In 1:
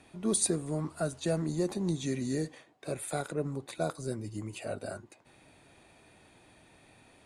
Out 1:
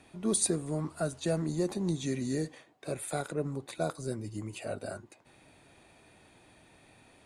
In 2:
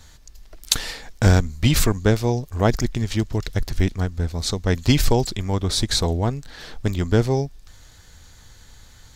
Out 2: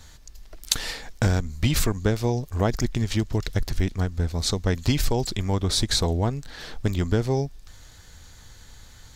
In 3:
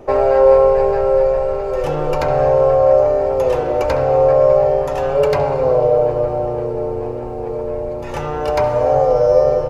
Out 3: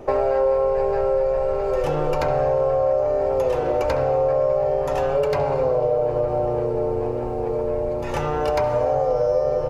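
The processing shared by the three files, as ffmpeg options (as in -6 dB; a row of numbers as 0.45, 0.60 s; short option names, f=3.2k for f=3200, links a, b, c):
-af "acompressor=threshold=-18dB:ratio=4"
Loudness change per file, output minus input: 0.0, -3.5, -6.0 LU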